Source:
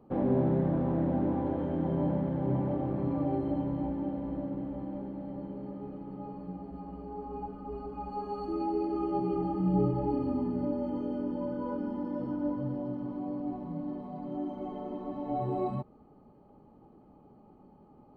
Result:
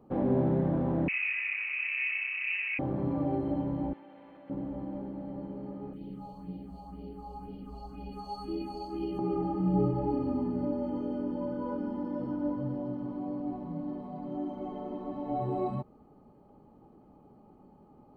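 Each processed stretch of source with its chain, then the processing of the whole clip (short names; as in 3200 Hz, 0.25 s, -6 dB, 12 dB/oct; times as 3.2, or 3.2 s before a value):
1.08–2.79 HPF 260 Hz 6 dB/oct + inverted band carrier 2800 Hz
3.93–4.5 band-pass 2500 Hz, Q 1.4 + fast leveller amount 70%
5.93–9.19 resonant high shelf 2500 Hz +11.5 dB, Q 1.5 + phaser stages 4, 2 Hz, lowest notch 300–1300 Hz + echo 0.102 s -10 dB
whole clip: dry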